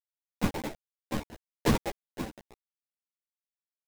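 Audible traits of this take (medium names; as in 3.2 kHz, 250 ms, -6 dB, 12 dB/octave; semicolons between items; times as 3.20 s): a quantiser's noise floor 6-bit, dither none; chopped level 0.67 Hz, depth 60%, duty 45%; aliases and images of a low sample rate 1.3 kHz, jitter 20%; a shimmering, thickened sound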